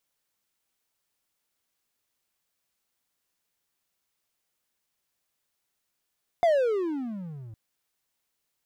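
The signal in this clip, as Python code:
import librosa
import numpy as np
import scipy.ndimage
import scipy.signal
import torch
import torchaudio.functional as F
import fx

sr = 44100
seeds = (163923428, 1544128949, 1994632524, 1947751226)

y = fx.riser_tone(sr, length_s=1.11, level_db=-15, wave='triangle', hz=710.0, rise_st=-33.0, swell_db=-23.5)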